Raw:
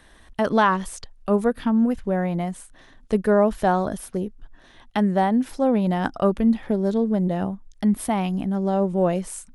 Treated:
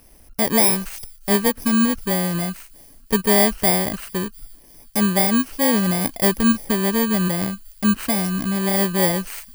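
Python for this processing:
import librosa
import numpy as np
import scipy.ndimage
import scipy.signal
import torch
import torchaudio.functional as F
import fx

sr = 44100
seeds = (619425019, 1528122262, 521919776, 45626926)

y = fx.bit_reversed(x, sr, seeds[0], block=32)
y = fx.echo_wet_highpass(y, sr, ms=351, feedback_pct=56, hz=4600.0, wet_db=-23)
y = y * librosa.db_to_amplitude(2.0)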